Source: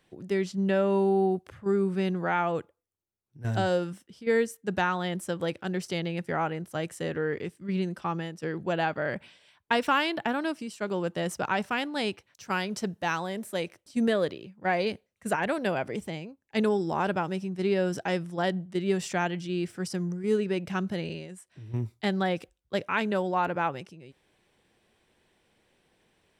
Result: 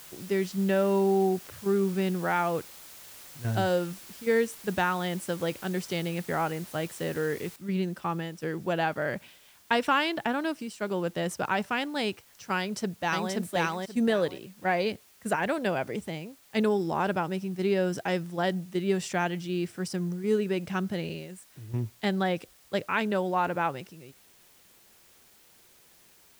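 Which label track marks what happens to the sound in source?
7.560000	7.560000	noise floor change −48 dB −59 dB
12.590000	13.320000	delay throw 530 ms, feedback 20%, level −0.5 dB

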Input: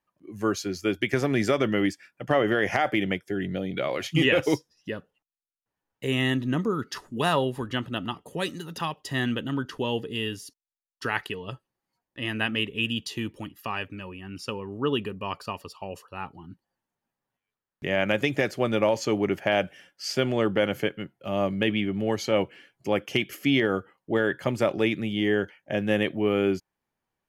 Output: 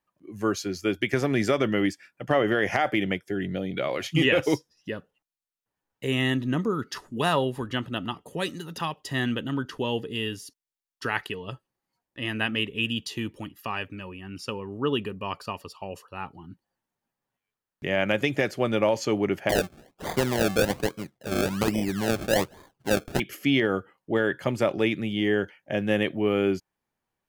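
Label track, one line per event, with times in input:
19.490000	23.200000	sample-and-hold swept by an LFO 31× 1.2 Hz

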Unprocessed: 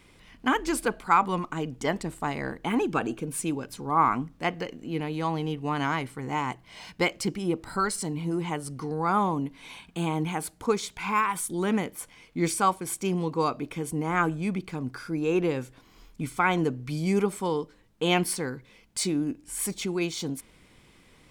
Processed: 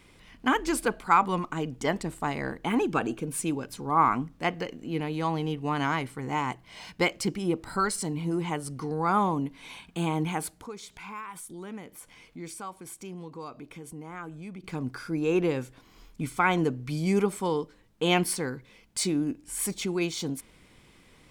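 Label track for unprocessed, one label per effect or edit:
10.490000	14.640000	downward compressor 2 to 1, threshold −48 dBFS

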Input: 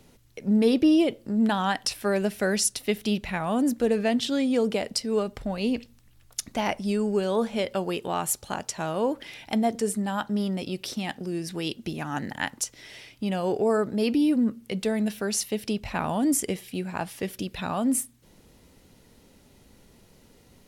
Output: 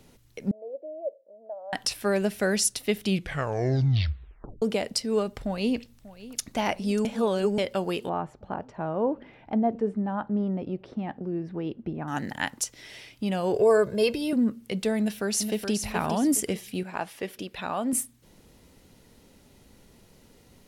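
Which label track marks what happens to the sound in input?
0.510000	1.730000	flat-topped band-pass 590 Hz, Q 5.1
3.000000	3.000000	tape stop 1.62 s
5.420000	6.510000	delay throw 590 ms, feedback 75%, level −17.5 dB
7.050000	7.580000	reverse
8.090000	12.080000	low-pass filter 1,100 Hz
13.540000	14.330000	comb filter 1.9 ms, depth 98%
14.980000	15.730000	delay throw 420 ms, feedback 35%, level −6.5 dB
16.830000	17.930000	bass and treble bass −10 dB, treble −6 dB

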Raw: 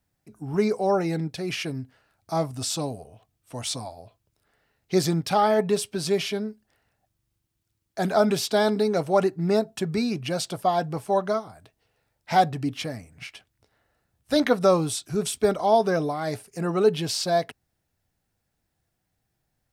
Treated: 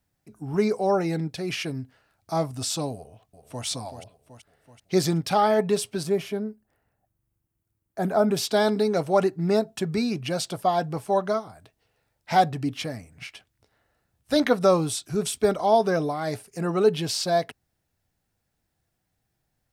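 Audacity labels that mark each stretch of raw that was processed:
2.950000	3.650000	delay throw 380 ms, feedback 60%, level −9.5 dB
6.030000	8.370000	parametric band 4,300 Hz −12.5 dB 2.1 octaves

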